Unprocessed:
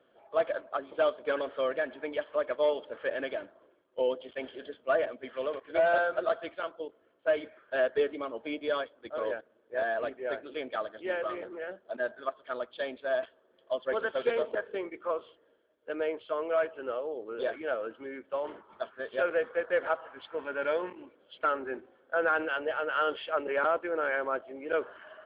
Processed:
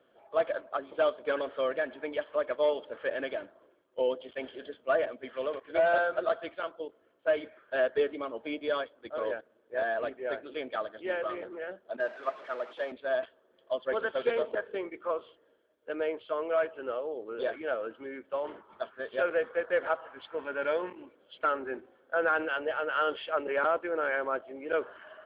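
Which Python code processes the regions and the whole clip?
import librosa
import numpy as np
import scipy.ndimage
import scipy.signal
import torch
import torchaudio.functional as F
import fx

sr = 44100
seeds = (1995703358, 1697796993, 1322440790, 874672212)

y = fx.chain(x, sr, fx.zero_step(step_db=-34.0),
    fx.bandpass_edges(low_hz=350.0, high_hz=2200.0),
    fx.upward_expand(threshold_db=-40.0, expansion=1.5), at=(12.0, 12.92))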